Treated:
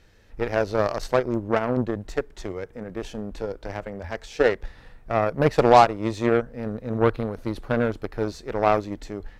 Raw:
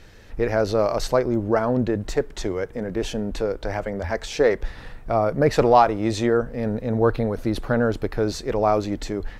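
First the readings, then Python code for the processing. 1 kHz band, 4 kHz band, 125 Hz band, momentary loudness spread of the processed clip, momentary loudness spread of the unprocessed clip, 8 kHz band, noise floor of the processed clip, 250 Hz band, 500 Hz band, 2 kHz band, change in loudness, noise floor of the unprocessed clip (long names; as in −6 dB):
0.0 dB, −3.5 dB, −3.0 dB, 14 LU, 9 LU, can't be measured, −50 dBFS, −3.0 dB, −2.0 dB, 0.0 dB, −1.5 dB, −42 dBFS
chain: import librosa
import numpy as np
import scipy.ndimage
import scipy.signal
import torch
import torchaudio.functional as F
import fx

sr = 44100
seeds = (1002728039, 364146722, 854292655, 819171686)

y = fx.cheby_harmonics(x, sr, harmonics=(7,), levels_db=(-20,), full_scale_db=-3.0)
y = fx.hpss(y, sr, part='harmonic', gain_db=4)
y = y * 10.0 ** (-1.0 / 20.0)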